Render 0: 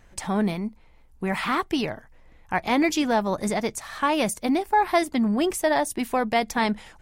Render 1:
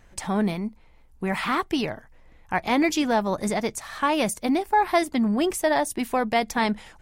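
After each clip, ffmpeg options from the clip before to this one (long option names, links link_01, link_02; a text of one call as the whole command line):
ffmpeg -i in.wav -af anull out.wav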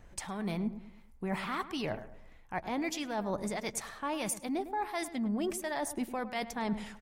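ffmpeg -i in.wav -filter_complex "[0:a]areverse,acompressor=threshold=-30dB:ratio=6,areverse,acrossover=split=1000[link_01][link_02];[link_01]aeval=exprs='val(0)*(1-0.5/2+0.5/2*cos(2*PI*1.5*n/s))':channel_layout=same[link_03];[link_02]aeval=exprs='val(0)*(1-0.5/2-0.5/2*cos(2*PI*1.5*n/s))':channel_layout=same[link_04];[link_03][link_04]amix=inputs=2:normalize=0,asplit=2[link_05][link_06];[link_06]adelay=105,lowpass=frequency=1600:poles=1,volume=-12dB,asplit=2[link_07][link_08];[link_08]adelay=105,lowpass=frequency=1600:poles=1,volume=0.42,asplit=2[link_09][link_10];[link_10]adelay=105,lowpass=frequency=1600:poles=1,volume=0.42,asplit=2[link_11][link_12];[link_12]adelay=105,lowpass=frequency=1600:poles=1,volume=0.42[link_13];[link_05][link_07][link_09][link_11][link_13]amix=inputs=5:normalize=0" out.wav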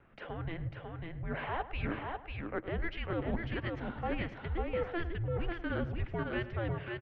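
ffmpeg -i in.wav -af "aeval=exprs='0.0944*(cos(1*acos(clip(val(0)/0.0944,-1,1)))-cos(1*PI/2))+0.00237*(cos(8*acos(clip(val(0)/0.0944,-1,1)))-cos(8*PI/2))':channel_layout=same,aecho=1:1:546:0.631,highpass=frequency=230:width_type=q:width=0.5412,highpass=frequency=230:width_type=q:width=1.307,lowpass=frequency=3300:width_type=q:width=0.5176,lowpass=frequency=3300:width_type=q:width=0.7071,lowpass=frequency=3300:width_type=q:width=1.932,afreqshift=-340" out.wav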